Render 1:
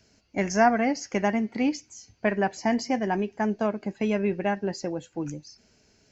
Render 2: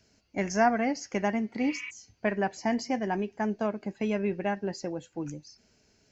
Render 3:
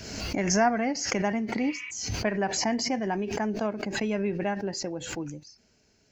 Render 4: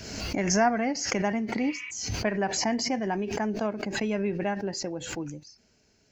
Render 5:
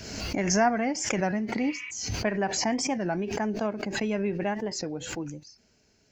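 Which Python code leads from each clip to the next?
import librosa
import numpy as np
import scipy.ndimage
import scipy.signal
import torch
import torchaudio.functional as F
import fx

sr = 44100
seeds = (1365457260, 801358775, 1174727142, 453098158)

y1 = fx.spec_repair(x, sr, seeds[0], start_s=1.66, length_s=0.22, low_hz=980.0, high_hz=4000.0, source='before')
y1 = y1 * 10.0 ** (-3.5 / 20.0)
y2 = fx.pre_swell(y1, sr, db_per_s=44.0)
y3 = y2
y4 = fx.record_warp(y3, sr, rpm=33.33, depth_cents=160.0)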